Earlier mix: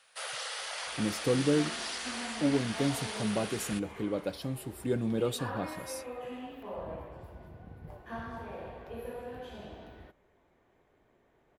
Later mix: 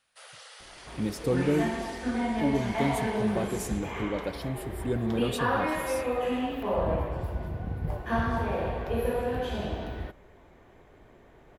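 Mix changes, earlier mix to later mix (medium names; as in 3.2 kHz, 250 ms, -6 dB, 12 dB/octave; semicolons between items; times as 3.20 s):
first sound -10.5 dB; second sound +12.0 dB; master: add bass shelf 91 Hz +8.5 dB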